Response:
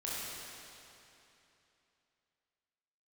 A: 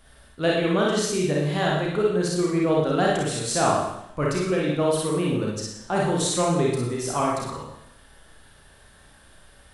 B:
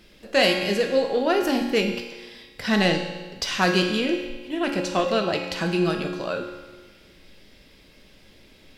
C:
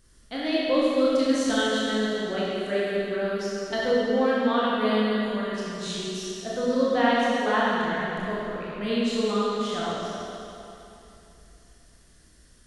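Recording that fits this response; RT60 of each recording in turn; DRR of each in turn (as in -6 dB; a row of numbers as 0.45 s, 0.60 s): C; 0.80 s, 1.4 s, 3.0 s; -4.0 dB, 2.0 dB, -7.5 dB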